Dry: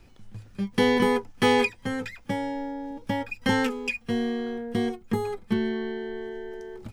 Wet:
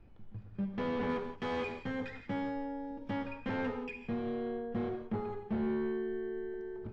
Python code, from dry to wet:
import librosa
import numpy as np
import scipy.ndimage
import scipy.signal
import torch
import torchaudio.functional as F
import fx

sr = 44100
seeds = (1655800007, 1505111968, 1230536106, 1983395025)

y = fx.high_shelf(x, sr, hz=2800.0, db=11.5, at=(1.09, 3.31))
y = np.clip(10.0 ** (26.0 / 20.0) * y, -1.0, 1.0) / 10.0 ** (26.0 / 20.0)
y = fx.spacing_loss(y, sr, db_at_10k=40)
y = fx.rev_gated(y, sr, seeds[0], gate_ms=200, shape='flat', drr_db=4.0)
y = y * librosa.db_to_amplitude(-4.0)